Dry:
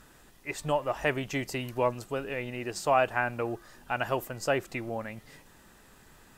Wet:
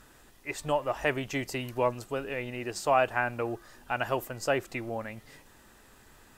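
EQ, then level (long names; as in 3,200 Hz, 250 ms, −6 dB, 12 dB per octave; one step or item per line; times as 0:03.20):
parametric band 170 Hz −8.5 dB 0.27 octaves
0.0 dB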